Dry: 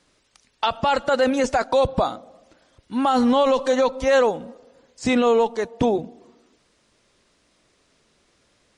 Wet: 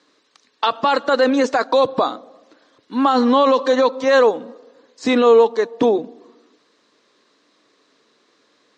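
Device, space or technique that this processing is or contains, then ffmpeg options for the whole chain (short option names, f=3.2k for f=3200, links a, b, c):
television speaker: -filter_complex "[0:a]asettb=1/sr,asplit=3[a][b][c];[a]atrim=end=3.134[d];[b]atrim=start=3.13:end=3.92,asetpts=PTS-STARTPTS,afade=t=in:d=0.004:c=qsin,afade=t=out:st=0.786:d=0.004:c=qsin,lowpass=7.9k[e];[c]atrim=start=3.916[f];[d][e]acrossfade=d=0.004:c1=hsin:c2=qsin[g];[g][f]acrossfade=d=0.004:c1=qsin:c2=hsin,highpass=f=160:w=0.5412,highpass=f=160:w=1.3066,equalizer=f=170:t=q:w=4:g=-7,equalizer=f=290:t=q:w=4:g=7,equalizer=f=450:t=q:w=4:g=7,equalizer=f=1.1k:t=q:w=4:g=8,equalizer=f=1.7k:t=q:w=4:g=5,equalizer=f=4k:t=q:w=4:g=7,lowpass=f=7.2k:w=0.5412,lowpass=f=7.2k:w=1.3066"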